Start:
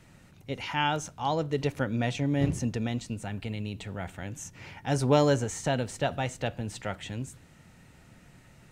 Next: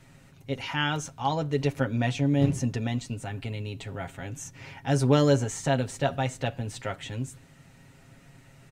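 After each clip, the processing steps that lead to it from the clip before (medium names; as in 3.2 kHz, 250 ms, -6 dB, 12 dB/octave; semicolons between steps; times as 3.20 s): comb 7.4 ms, depth 59%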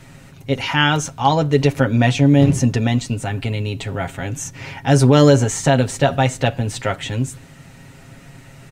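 loudness maximiser +12.5 dB; trim -1 dB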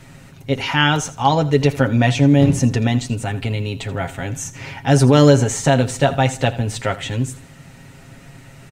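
feedback delay 82 ms, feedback 30%, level -17 dB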